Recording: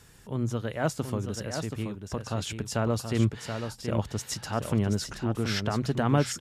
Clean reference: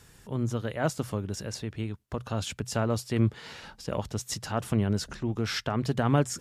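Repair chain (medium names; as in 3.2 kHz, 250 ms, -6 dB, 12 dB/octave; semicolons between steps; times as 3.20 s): inverse comb 728 ms -7 dB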